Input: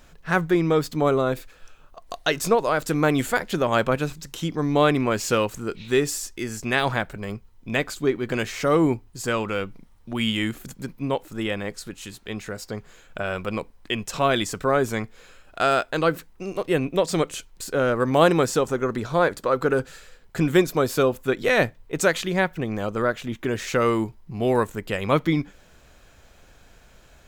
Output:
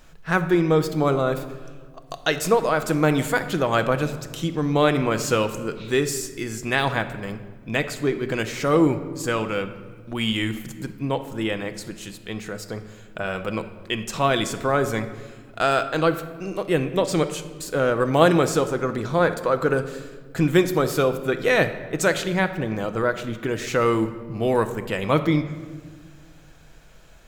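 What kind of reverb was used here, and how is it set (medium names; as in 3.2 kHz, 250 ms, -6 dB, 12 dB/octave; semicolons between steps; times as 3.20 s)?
simulated room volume 1500 m³, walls mixed, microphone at 0.64 m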